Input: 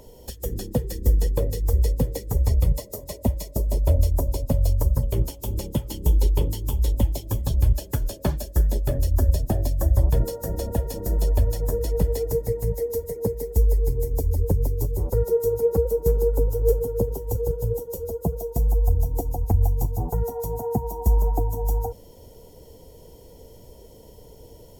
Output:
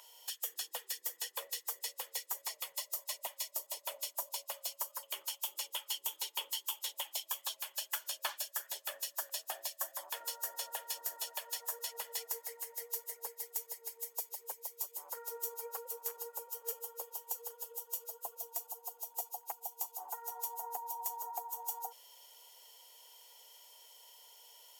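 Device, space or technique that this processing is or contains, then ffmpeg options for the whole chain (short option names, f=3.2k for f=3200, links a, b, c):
headphones lying on a table: -af "highpass=f=1k:w=0.5412,highpass=f=1k:w=1.3066,equalizer=f=3k:t=o:w=0.39:g=7,volume=-1dB"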